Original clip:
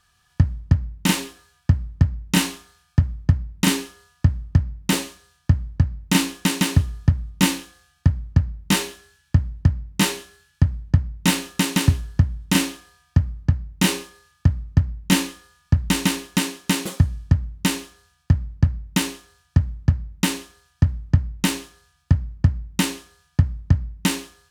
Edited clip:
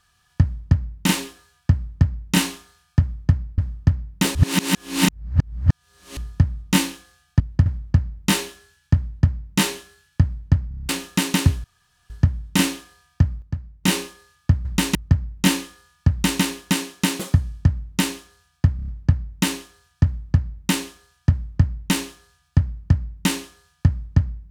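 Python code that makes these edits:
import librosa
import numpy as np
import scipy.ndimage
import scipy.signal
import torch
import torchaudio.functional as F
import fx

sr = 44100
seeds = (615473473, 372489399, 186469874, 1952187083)

y = fx.edit(x, sr, fx.cut(start_s=3.58, length_s=0.68),
    fx.reverse_span(start_s=5.03, length_s=1.82),
    fx.duplicate(start_s=9.46, length_s=0.26, to_s=8.08),
    fx.stutter_over(start_s=11.1, slice_s=0.03, count=7),
    fx.insert_room_tone(at_s=12.06, length_s=0.46),
    fx.fade_down_up(start_s=13.2, length_s=0.78, db=-8.5, fade_s=0.18, curve='log'),
    fx.duplicate(start_s=15.77, length_s=0.3, to_s=14.61),
    fx.stutter(start_s=18.42, slice_s=0.03, count=5), tone=tone)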